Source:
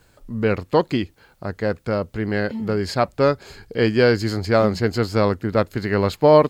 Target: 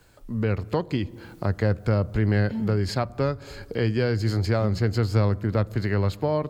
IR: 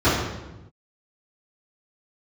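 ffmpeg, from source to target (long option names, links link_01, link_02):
-filter_complex "[0:a]dynaudnorm=framelen=170:gausssize=5:maxgain=11.5dB,asplit=2[link_01][link_02];[1:a]atrim=start_sample=2205[link_03];[link_02][link_03]afir=irnorm=-1:irlink=0,volume=-43.5dB[link_04];[link_01][link_04]amix=inputs=2:normalize=0,acrossover=split=140[link_05][link_06];[link_06]acompressor=threshold=-28dB:ratio=2.5[link_07];[link_05][link_07]amix=inputs=2:normalize=0,volume=-1dB"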